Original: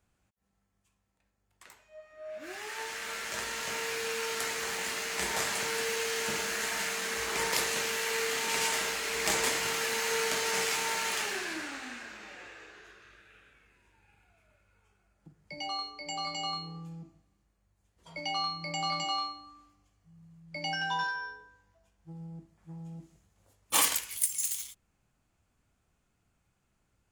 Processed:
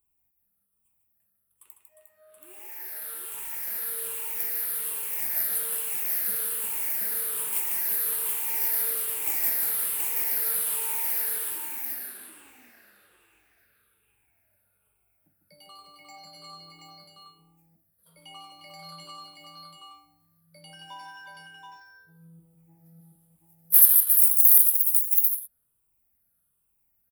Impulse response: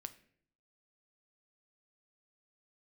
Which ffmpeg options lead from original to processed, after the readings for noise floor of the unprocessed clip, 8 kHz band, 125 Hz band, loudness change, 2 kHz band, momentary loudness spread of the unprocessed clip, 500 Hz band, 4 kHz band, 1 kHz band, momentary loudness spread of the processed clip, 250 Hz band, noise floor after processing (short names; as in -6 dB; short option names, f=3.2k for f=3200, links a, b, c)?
-77 dBFS, +4.5 dB, n/a, +9.5 dB, -10.0 dB, 18 LU, -11.5 dB, -10.5 dB, -10.0 dB, 17 LU, -10.0 dB, -73 dBFS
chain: -af "afftfilt=real='re*pow(10,13/40*sin(2*PI*(0.67*log(max(b,1)*sr/1024/100)/log(2)-(-1.2)*(pts-256)/sr)))':imag='im*pow(10,13/40*sin(2*PI*(0.67*log(max(b,1)*sr/1024/100)/log(2)-(-1.2)*(pts-256)/sr)))':win_size=1024:overlap=0.75,aecho=1:1:151|355|728:0.501|0.473|0.668,aexciter=amount=15.1:drive=9.5:freq=10k,volume=-15dB"